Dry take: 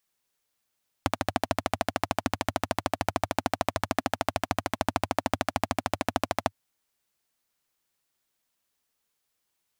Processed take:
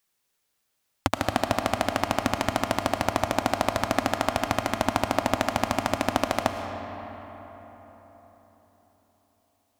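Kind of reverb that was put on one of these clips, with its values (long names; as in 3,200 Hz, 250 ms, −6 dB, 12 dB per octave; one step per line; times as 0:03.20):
comb and all-pass reverb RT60 4.5 s, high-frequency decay 0.5×, pre-delay 70 ms, DRR 5.5 dB
level +3 dB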